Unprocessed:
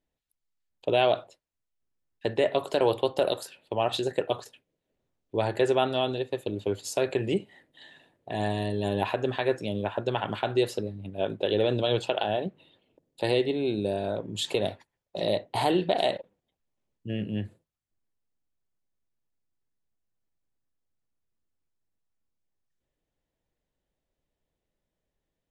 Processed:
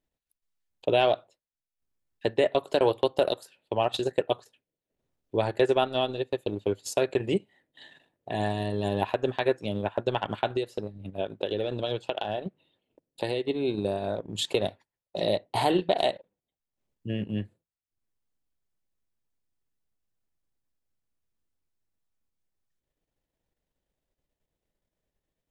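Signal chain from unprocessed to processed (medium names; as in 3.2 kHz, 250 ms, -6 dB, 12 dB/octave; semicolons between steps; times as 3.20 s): transient shaper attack +2 dB, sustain -10 dB; 10.47–13.47 s: compression 3:1, threshold -27 dBFS, peak gain reduction 7.5 dB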